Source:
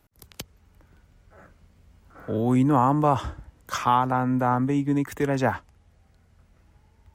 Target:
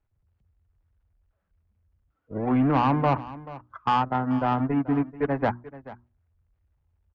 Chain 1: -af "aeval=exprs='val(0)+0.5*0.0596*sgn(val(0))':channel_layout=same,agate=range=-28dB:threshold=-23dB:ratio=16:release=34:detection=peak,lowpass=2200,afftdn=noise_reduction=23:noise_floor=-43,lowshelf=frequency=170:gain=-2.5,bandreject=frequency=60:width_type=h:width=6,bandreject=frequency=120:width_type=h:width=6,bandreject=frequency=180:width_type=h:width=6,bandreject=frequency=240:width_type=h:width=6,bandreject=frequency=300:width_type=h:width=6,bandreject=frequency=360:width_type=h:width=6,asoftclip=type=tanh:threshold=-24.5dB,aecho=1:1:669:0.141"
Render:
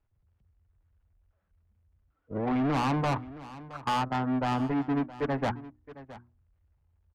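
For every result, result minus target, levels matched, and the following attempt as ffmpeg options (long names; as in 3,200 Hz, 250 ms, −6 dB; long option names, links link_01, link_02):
echo 234 ms late; soft clipping: distortion +8 dB
-af "aeval=exprs='val(0)+0.5*0.0596*sgn(val(0))':channel_layout=same,agate=range=-28dB:threshold=-23dB:ratio=16:release=34:detection=peak,lowpass=2200,afftdn=noise_reduction=23:noise_floor=-43,lowshelf=frequency=170:gain=-2.5,bandreject=frequency=60:width_type=h:width=6,bandreject=frequency=120:width_type=h:width=6,bandreject=frequency=180:width_type=h:width=6,bandreject=frequency=240:width_type=h:width=6,bandreject=frequency=300:width_type=h:width=6,bandreject=frequency=360:width_type=h:width=6,asoftclip=type=tanh:threshold=-24.5dB,aecho=1:1:435:0.141"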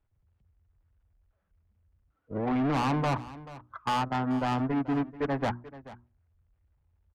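soft clipping: distortion +8 dB
-af "aeval=exprs='val(0)+0.5*0.0596*sgn(val(0))':channel_layout=same,agate=range=-28dB:threshold=-23dB:ratio=16:release=34:detection=peak,lowpass=2200,afftdn=noise_reduction=23:noise_floor=-43,lowshelf=frequency=170:gain=-2.5,bandreject=frequency=60:width_type=h:width=6,bandreject=frequency=120:width_type=h:width=6,bandreject=frequency=180:width_type=h:width=6,bandreject=frequency=240:width_type=h:width=6,bandreject=frequency=300:width_type=h:width=6,bandreject=frequency=360:width_type=h:width=6,asoftclip=type=tanh:threshold=-14.5dB,aecho=1:1:435:0.141"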